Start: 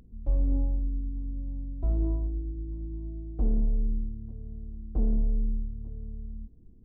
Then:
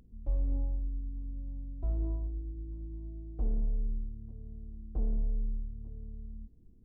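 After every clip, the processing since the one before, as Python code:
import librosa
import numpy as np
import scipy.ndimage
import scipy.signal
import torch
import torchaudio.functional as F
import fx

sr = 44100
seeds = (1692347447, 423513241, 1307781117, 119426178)

y = fx.dynamic_eq(x, sr, hz=240.0, q=1.1, threshold_db=-44.0, ratio=4.0, max_db=-5)
y = y * librosa.db_to_amplitude(-5.0)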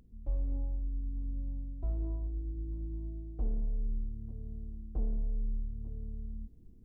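y = fx.rider(x, sr, range_db=3, speed_s=0.5)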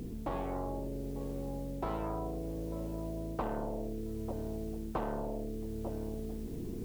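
y = fx.spectral_comp(x, sr, ratio=10.0)
y = y * librosa.db_to_amplitude(3.0)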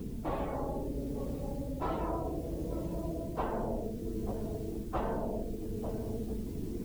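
y = fx.phase_scramble(x, sr, seeds[0], window_ms=50)
y = y * librosa.db_to_amplitude(2.0)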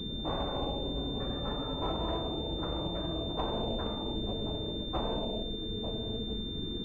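y = fx.echo_pitch(x, sr, ms=91, semitones=5, count=2, db_per_echo=-6.0)
y = fx.pwm(y, sr, carrier_hz=3600.0)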